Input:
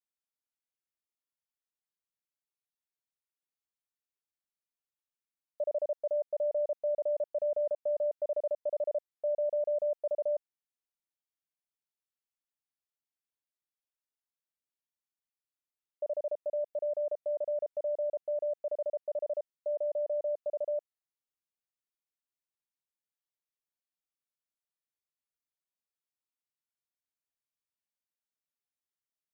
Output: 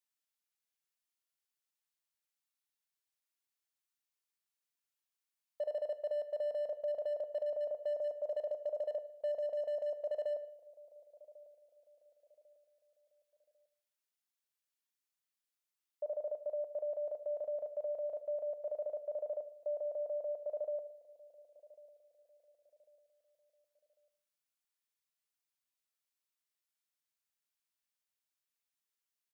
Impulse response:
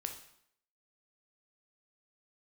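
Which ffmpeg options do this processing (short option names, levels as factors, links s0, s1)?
-filter_complex "[0:a]tiltshelf=f=780:g=-6,asplit=2[s0][s1];[s1]adelay=1097,lowpass=f=830:p=1,volume=0.119,asplit=2[s2][s3];[s3]adelay=1097,lowpass=f=830:p=1,volume=0.43,asplit=2[s4][s5];[s5]adelay=1097,lowpass=f=830:p=1,volume=0.43[s6];[s0][s2][s4][s6]amix=inputs=4:normalize=0,asoftclip=type=hard:threshold=0.0376,asplit=2[s7][s8];[1:a]atrim=start_sample=2205[s9];[s8][s9]afir=irnorm=-1:irlink=0,volume=1.06[s10];[s7][s10]amix=inputs=2:normalize=0,volume=0.422"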